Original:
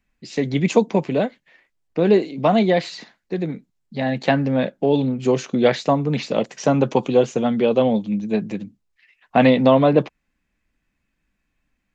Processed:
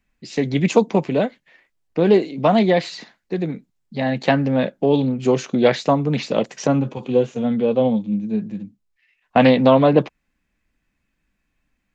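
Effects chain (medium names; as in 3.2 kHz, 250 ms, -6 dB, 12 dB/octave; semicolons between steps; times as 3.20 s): 6.67–9.36 s: harmonic-percussive split percussive -17 dB; loudspeaker Doppler distortion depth 0.1 ms; trim +1 dB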